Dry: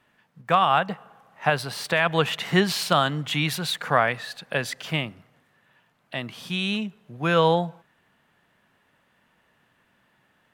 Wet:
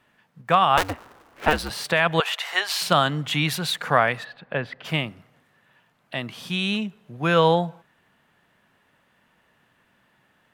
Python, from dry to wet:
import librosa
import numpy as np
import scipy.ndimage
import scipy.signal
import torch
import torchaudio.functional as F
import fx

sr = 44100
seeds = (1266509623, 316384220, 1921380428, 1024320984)

y = fx.cycle_switch(x, sr, every=2, mode='inverted', at=(0.77, 1.7))
y = fx.highpass(y, sr, hz=630.0, slope=24, at=(2.2, 2.81))
y = fx.air_absorb(y, sr, metres=410.0, at=(4.23, 4.84), fade=0.02)
y = y * librosa.db_to_amplitude(1.5)